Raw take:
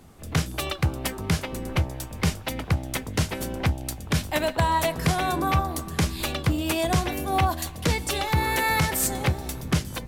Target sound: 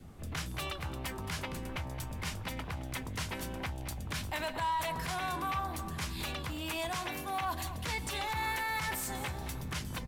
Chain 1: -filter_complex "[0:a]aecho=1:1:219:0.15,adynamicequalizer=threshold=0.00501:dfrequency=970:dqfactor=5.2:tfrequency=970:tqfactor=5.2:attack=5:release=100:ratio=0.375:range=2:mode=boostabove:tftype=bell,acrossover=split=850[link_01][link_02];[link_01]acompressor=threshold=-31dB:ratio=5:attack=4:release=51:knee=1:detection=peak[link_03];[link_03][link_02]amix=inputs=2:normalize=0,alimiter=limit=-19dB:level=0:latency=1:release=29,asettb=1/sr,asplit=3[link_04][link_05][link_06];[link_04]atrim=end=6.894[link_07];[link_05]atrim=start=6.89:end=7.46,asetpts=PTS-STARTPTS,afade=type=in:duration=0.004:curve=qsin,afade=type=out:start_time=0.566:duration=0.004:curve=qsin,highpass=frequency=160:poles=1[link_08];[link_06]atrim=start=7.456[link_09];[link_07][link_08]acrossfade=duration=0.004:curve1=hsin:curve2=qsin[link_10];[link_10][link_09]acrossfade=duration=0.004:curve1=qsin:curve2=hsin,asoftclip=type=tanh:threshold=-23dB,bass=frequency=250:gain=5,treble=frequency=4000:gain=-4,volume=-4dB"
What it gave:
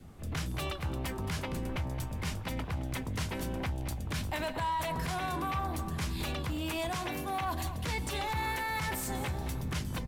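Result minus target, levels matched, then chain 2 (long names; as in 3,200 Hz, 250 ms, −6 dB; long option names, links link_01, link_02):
downward compressor: peak gain reduction −5.5 dB
-filter_complex "[0:a]aecho=1:1:219:0.15,adynamicequalizer=threshold=0.00501:dfrequency=970:dqfactor=5.2:tfrequency=970:tqfactor=5.2:attack=5:release=100:ratio=0.375:range=2:mode=boostabove:tftype=bell,acrossover=split=850[link_01][link_02];[link_01]acompressor=threshold=-38dB:ratio=5:attack=4:release=51:knee=1:detection=peak[link_03];[link_03][link_02]amix=inputs=2:normalize=0,alimiter=limit=-19dB:level=0:latency=1:release=29,asettb=1/sr,asplit=3[link_04][link_05][link_06];[link_04]atrim=end=6.894[link_07];[link_05]atrim=start=6.89:end=7.46,asetpts=PTS-STARTPTS,afade=type=in:duration=0.004:curve=qsin,afade=type=out:start_time=0.566:duration=0.004:curve=qsin,highpass=frequency=160:poles=1[link_08];[link_06]atrim=start=7.456[link_09];[link_07][link_08]acrossfade=duration=0.004:curve1=hsin:curve2=qsin[link_10];[link_10][link_09]acrossfade=duration=0.004:curve1=qsin:curve2=hsin,asoftclip=type=tanh:threshold=-23dB,bass=frequency=250:gain=5,treble=frequency=4000:gain=-4,volume=-4dB"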